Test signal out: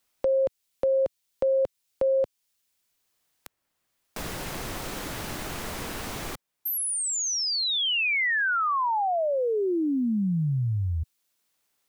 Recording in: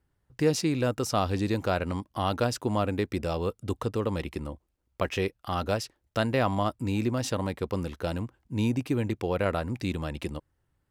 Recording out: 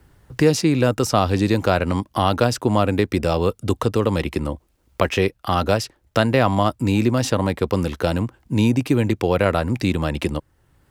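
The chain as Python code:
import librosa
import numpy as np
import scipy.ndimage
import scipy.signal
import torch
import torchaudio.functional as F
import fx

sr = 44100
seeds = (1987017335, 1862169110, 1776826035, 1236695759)

y = fx.band_squash(x, sr, depth_pct=40)
y = F.gain(torch.from_numpy(y), 9.0).numpy()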